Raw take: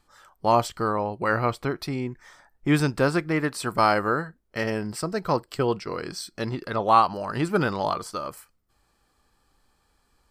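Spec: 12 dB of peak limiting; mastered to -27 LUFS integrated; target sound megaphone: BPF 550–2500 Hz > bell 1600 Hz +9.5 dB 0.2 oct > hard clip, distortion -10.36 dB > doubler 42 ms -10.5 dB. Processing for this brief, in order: limiter -16.5 dBFS; BPF 550–2500 Hz; bell 1600 Hz +9.5 dB 0.2 oct; hard clip -25 dBFS; doubler 42 ms -10.5 dB; gain +6 dB

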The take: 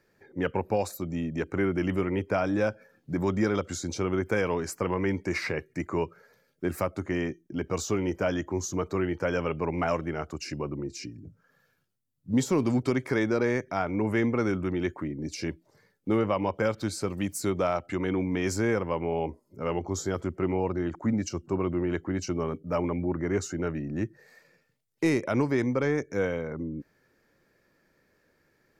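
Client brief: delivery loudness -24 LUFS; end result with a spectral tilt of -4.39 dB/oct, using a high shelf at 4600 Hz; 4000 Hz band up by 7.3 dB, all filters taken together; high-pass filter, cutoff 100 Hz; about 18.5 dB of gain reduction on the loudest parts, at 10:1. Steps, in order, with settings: HPF 100 Hz; bell 4000 Hz +6 dB; high shelf 4600 Hz +6.5 dB; compressor 10:1, threshold -40 dBFS; gain +20 dB

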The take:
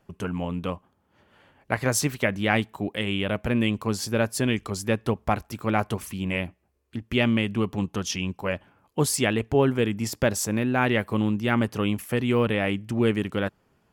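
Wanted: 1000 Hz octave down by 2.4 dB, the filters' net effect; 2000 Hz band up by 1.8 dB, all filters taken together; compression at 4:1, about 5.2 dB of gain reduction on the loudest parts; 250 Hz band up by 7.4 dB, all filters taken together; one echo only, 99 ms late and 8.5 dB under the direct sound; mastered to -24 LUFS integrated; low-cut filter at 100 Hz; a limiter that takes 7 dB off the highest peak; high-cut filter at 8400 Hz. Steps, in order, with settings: HPF 100 Hz; LPF 8400 Hz; bell 250 Hz +9 dB; bell 1000 Hz -5 dB; bell 2000 Hz +3.5 dB; compressor 4:1, threshold -18 dBFS; limiter -13.5 dBFS; echo 99 ms -8.5 dB; gain +1.5 dB

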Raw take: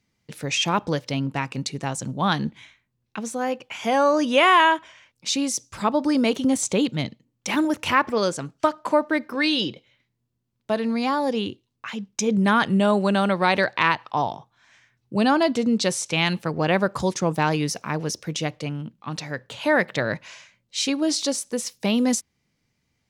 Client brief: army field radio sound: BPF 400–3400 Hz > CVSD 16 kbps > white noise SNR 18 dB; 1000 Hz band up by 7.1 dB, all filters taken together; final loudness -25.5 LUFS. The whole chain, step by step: BPF 400–3400 Hz; bell 1000 Hz +8.5 dB; CVSD 16 kbps; white noise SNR 18 dB; gain -0.5 dB

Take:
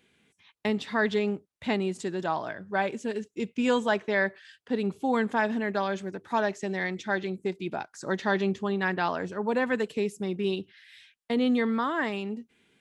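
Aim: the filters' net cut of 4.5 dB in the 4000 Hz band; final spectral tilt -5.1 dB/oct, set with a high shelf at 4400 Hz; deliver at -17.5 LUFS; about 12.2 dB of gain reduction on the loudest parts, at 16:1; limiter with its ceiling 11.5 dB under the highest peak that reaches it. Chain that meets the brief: bell 4000 Hz -3 dB; high shelf 4400 Hz -6 dB; compressor 16:1, threshold -33 dBFS; gain +23.5 dB; limiter -7.5 dBFS

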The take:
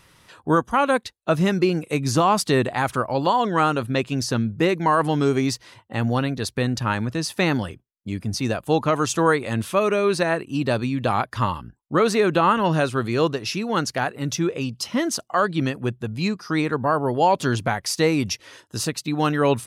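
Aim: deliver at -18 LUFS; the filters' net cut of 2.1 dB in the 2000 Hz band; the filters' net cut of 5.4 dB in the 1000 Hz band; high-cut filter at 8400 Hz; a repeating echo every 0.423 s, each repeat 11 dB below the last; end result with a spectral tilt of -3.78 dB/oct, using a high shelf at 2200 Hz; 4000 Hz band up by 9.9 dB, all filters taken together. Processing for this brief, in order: LPF 8400 Hz; bell 1000 Hz -7 dB; bell 2000 Hz -7 dB; high shelf 2200 Hz +7 dB; bell 4000 Hz +8 dB; feedback echo 0.423 s, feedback 28%, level -11 dB; gain +3.5 dB

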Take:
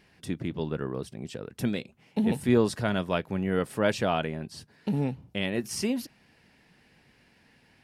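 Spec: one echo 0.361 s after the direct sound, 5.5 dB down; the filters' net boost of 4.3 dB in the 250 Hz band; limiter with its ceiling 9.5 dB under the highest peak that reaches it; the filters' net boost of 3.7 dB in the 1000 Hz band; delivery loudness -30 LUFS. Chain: bell 250 Hz +5 dB; bell 1000 Hz +5 dB; limiter -17 dBFS; echo 0.361 s -5.5 dB; gain -1 dB

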